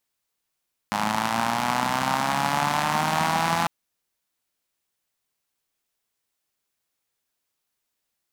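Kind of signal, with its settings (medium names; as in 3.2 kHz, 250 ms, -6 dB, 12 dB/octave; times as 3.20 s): four-cylinder engine model, changing speed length 2.75 s, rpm 3100, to 5100, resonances 210/840 Hz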